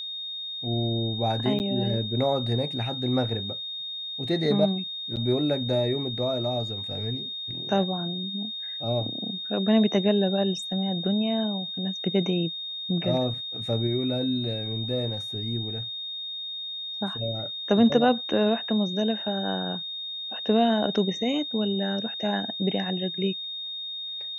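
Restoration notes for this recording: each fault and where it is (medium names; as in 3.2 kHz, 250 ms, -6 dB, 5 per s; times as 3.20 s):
whine 3.7 kHz -32 dBFS
1.59–1.60 s: dropout 9.6 ms
5.16–5.17 s: dropout 7.7 ms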